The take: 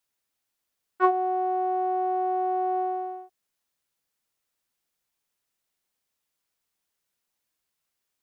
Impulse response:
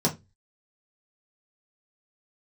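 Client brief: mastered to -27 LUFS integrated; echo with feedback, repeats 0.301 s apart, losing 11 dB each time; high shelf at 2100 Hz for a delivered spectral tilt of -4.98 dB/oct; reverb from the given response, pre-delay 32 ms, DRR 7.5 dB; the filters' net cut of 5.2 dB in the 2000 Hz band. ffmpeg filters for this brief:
-filter_complex "[0:a]equalizer=f=2k:t=o:g=-5.5,highshelf=f=2.1k:g=-5.5,aecho=1:1:301|602|903:0.282|0.0789|0.0221,asplit=2[a][b];[1:a]atrim=start_sample=2205,adelay=32[c];[b][c]afir=irnorm=-1:irlink=0,volume=-18.5dB[d];[a][d]amix=inputs=2:normalize=0,volume=-1.5dB"

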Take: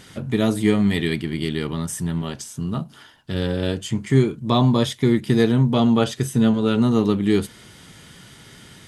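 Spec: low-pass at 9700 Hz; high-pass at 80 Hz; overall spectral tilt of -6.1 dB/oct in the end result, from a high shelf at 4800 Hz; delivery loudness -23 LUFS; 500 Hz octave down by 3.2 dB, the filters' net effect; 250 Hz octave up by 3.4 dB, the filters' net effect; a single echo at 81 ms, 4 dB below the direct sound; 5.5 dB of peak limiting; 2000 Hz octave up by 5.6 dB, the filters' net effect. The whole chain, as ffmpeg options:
-af "highpass=80,lowpass=9.7k,equalizer=f=250:t=o:g=5.5,equalizer=f=500:t=o:g=-7,equalizer=f=2k:t=o:g=8,highshelf=f=4.8k:g=-7,alimiter=limit=-9.5dB:level=0:latency=1,aecho=1:1:81:0.631,volume=-4dB"

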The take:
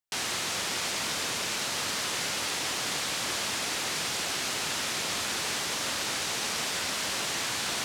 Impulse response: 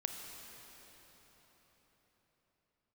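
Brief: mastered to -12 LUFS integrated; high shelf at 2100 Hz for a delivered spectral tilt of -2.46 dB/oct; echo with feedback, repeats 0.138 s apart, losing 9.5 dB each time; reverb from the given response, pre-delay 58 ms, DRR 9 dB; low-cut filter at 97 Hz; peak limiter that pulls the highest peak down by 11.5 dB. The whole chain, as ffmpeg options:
-filter_complex "[0:a]highpass=97,highshelf=f=2.1k:g=-4.5,alimiter=level_in=7.5dB:limit=-24dB:level=0:latency=1,volume=-7.5dB,aecho=1:1:138|276|414|552:0.335|0.111|0.0365|0.012,asplit=2[a][b];[1:a]atrim=start_sample=2205,adelay=58[c];[b][c]afir=irnorm=-1:irlink=0,volume=-9.5dB[d];[a][d]amix=inputs=2:normalize=0,volume=25.5dB"

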